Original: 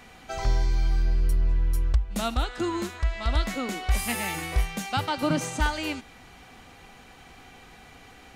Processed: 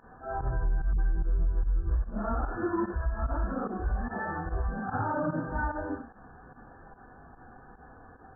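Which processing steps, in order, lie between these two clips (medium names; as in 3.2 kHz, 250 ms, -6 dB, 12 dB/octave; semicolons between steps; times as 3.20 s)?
phase randomisation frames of 200 ms; peak limiter -20.5 dBFS, peak gain reduction 9 dB; 0.93–2.94 s: phase dispersion highs, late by 56 ms, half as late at 340 Hz; volume shaper 147 bpm, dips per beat 1, -15 dB, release 77 ms; brick-wall FIR low-pass 1.8 kHz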